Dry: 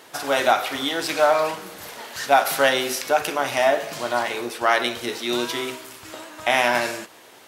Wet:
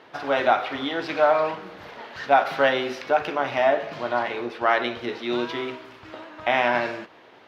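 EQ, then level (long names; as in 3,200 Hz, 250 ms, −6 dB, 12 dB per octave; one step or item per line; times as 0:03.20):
high-frequency loss of the air 290 metres
0.0 dB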